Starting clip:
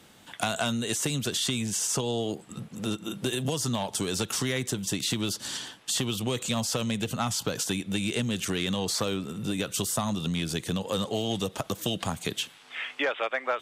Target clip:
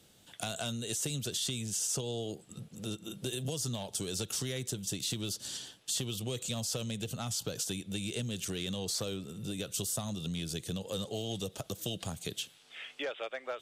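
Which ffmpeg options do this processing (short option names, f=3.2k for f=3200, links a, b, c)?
-af "equalizer=f=250:t=o:w=1:g=-6,equalizer=f=1k:t=o:w=1:g=-10,equalizer=f=2k:t=o:w=1:g=-7,volume=-4dB"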